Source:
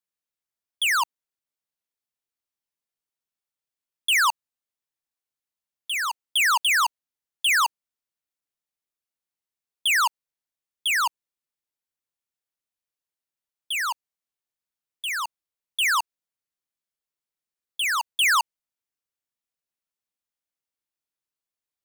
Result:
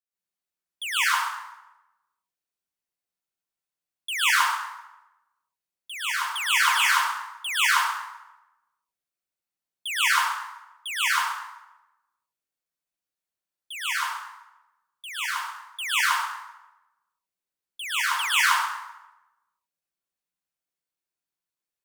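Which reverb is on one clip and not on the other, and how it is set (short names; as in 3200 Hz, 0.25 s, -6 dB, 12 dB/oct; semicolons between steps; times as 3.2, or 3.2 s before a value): plate-style reverb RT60 0.98 s, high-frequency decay 0.7×, pre-delay 0.1 s, DRR -10 dB; gain -10 dB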